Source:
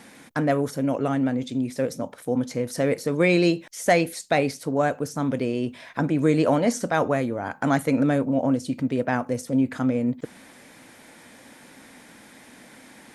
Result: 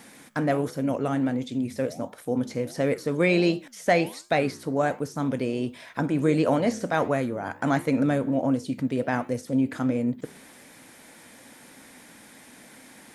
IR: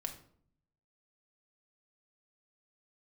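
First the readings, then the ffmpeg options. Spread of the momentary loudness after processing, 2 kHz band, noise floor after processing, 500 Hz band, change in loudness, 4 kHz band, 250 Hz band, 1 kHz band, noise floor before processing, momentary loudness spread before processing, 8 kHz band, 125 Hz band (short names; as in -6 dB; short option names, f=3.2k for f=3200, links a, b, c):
8 LU, -1.5 dB, -50 dBFS, -2.0 dB, -2.0 dB, -2.0 dB, -2.0 dB, -2.0 dB, -50 dBFS, 8 LU, -6.0 dB, -2.0 dB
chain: -filter_complex "[0:a]acrossover=split=4800[a][b];[b]acompressor=threshold=-48dB:ratio=4:attack=1:release=60[c];[a][c]amix=inputs=2:normalize=0,flanger=delay=7:depth=9.4:regen=-86:speed=1.4:shape=sinusoidal,highshelf=f=7.7k:g=7.5,volume=2.5dB"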